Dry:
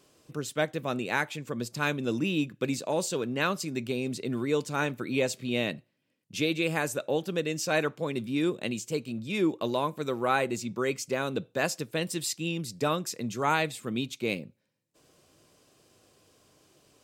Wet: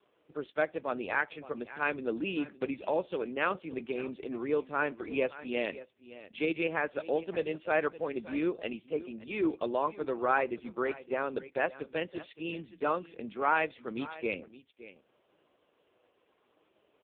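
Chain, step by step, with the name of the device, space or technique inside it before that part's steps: satellite phone (BPF 330–3000 Hz; echo 0.567 s -16.5 dB; AMR-NB 4.75 kbps 8000 Hz)

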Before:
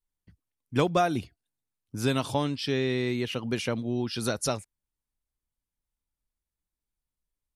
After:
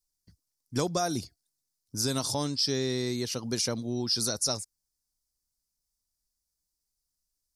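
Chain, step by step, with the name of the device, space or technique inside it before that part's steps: over-bright horn tweeter (resonant high shelf 3800 Hz +10.5 dB, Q 3; limiter -14.5 dBFS, peak gain reduction 10 dB); gain -2.5 dB

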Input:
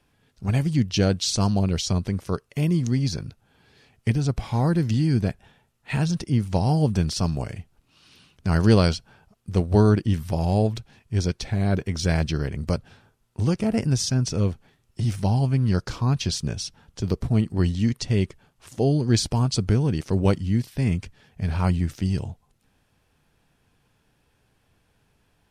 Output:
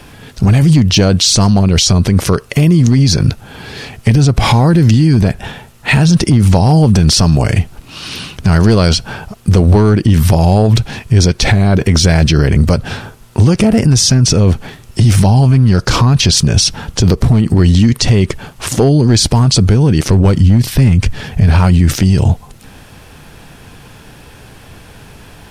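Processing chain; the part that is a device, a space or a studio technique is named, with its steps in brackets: 20.07–21.47 low shelf 120 Hz +8 dB; loud club master (compressor 2.5:1, threshold -25 dBFS, peak gain reduction 10 dB; hard clip -19 dBFS, distortion -21 dB; maximiser +30 dB); gain -1 dB

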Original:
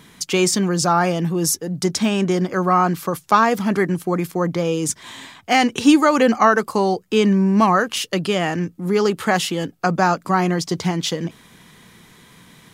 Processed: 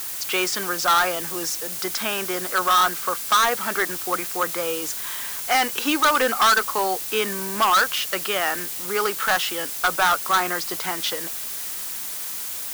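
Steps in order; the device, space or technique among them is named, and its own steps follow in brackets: drive-through speaker (BPF 530–3600 Hz; bell 1400 Hz +9 dB 0.57 oct; hard clip -13 dBFS, distortion -7 dB; white noise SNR 14 dB); high shelf 4700 Hz +10 dB; gain -2 dB

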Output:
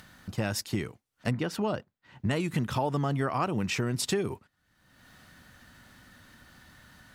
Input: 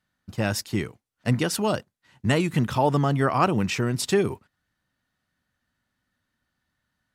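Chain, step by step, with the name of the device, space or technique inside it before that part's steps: upward and downward compression (upward compressor, threshold -35 dBFS; compressor 4:1, threshold -26 dBFS, peak gain reduction 9.5 dB); 1.31–2.31 bell 9900 Hz -14 dB 1.8 oct

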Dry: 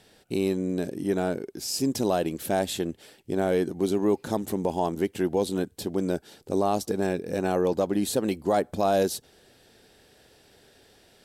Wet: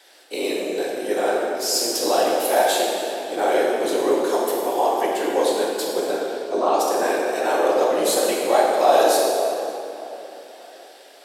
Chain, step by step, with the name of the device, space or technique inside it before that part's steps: Chebyshev high-pass 300 Hz, order 5; 6.11–6.79 air absorption 94 m; tape echo 0.581 s, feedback 51%, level -17 dB, low-pass 2400 Hz; whispering ghost (whisperiser; HPF 520 Hz 12 dB/oct; reverb RT60 2.7 s, pre-delay 3 ms, DRR -4 dB); gain +5.5 dB

